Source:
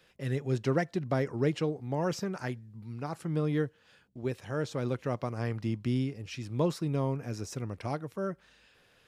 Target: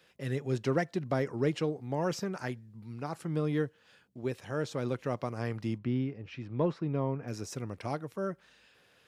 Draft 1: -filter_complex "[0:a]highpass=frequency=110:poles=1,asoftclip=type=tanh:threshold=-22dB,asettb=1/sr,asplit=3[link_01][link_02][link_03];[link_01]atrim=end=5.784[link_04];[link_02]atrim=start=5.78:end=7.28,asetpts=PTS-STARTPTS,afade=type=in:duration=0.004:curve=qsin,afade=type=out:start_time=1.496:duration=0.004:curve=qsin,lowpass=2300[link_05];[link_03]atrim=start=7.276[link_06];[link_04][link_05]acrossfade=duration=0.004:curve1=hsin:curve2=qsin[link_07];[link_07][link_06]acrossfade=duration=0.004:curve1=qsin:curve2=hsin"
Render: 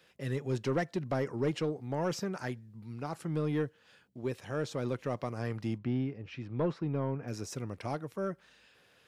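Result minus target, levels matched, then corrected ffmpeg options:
soft clipping: distortion +17 dB
-filter_complex "[0:a]highpass=frequency=110:poles=1,asoftclip=type=tanh:threshold=-11.5dB,asettb=1/sr,asplit=3[link_01][link_02][link_03];[link_01]atrim=end=5.784[link_04];[link_02]atrim=start=5.78:end=7.28,asetpts=PTS-STARTPTS,afade=type=in:duration=0.004:curve=qsin,afade=type=out:start_time=1.496:duration=0.004:curve=qsin,lowpass=2300[link_05];[link_03]atrim=start=7.276[link_06];[link_04][link_05]acrossfade=duration=0.004:curve1=hsin:curve2=qsin[link_07];[link_07][link_06]acrossfade=duration=0.004:curve1=qsin:curve2=hsin"

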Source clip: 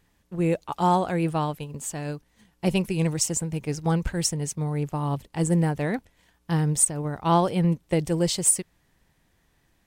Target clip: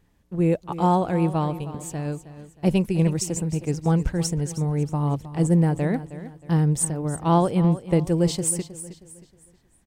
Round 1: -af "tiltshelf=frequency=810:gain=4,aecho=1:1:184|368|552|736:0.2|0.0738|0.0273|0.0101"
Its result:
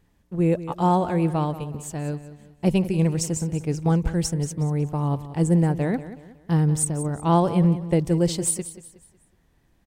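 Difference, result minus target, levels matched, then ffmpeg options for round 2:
echo 131 ms early
-af "tiltshelf=frequency=810:gain=4,aecho=1:1:315|630|945|1260:0.2|0.0738|0.0273|0.0101"

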